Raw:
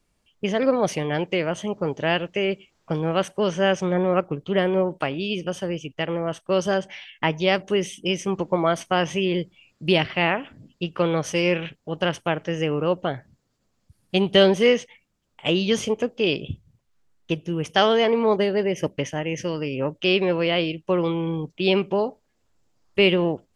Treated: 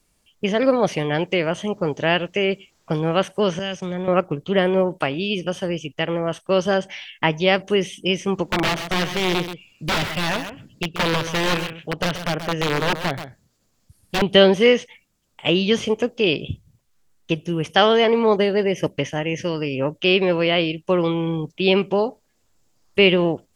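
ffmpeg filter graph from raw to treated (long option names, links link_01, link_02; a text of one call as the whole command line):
ffmpeg -i in.wav -filter_complex "[0:a]asettb=1/sr,asplit=3[link_01][link_02][link_03];[link_01]atrim=end=3.594[link_04];[link_02]atrim=start=3.59:end=4.08,asetpts=PTS-STARTPTS,afade=type=in:duration=0.004:curve=qsin,afade=type=out:start_time=0.486:duration=0.004:curve=qsin,acrossover=split=140|3000[link_05][link_06][link_07];[link_06]acompressor=threshold=-29dB:ratio=5:attack=3.2:release=140:knee=2.83:detection=peak[link_08];[link_05][link_08][link_07]amix=inputs=3:normalize=0,agate=range=-33dB:threshold=-32dB:ratio=3:release=100:detection=peak[link_09];[link_03]atrim=start=4.076[link_10];[link_04][link_09]acrossfade=duration=0.004:curve1=hsin:curve2=qsin[link_11];[link_11][link_10]acrossfade=duration=0.004:curve1=qsin:curve2=hsin,asettb=1/sr,asplit=3[link_12][link_13][link_14];[link_12]atrim=end=8.434[link_15];[link_13]atrim=start=8.43:end=14.22,asetpts=PTS-STARTPTS,afade=type=in:duration=0.004:curve=qsin,afade=type=out:start_time=5.786:duration=0.004:curve=qsin,aeval=exprs='(mod(7.08*val(0)+1,2)-1)/7.08':channel_layout=same,aecho=1:1:131:0.316,atrim=end_sample=255339[link_16];[link_14]atrim=start=14.216[link_17];[link_15][link_16]acrossfade=duration=0.004:curve1=hsin:curve2=qsin[link_18];[link_18][link_17]acrossfade=duration=0.004:curve1=qsin:curve2=hsin,aemphasis=mode=production:type=cd,acrossover=split=4100[link_19][link_20];[link_20]acompressor=threshold=-46dB:ratio=4:attack=1:release=60[link_21];[link_19][link_21]amix=inputs=2:normalize=0,volume=3dB" out.wav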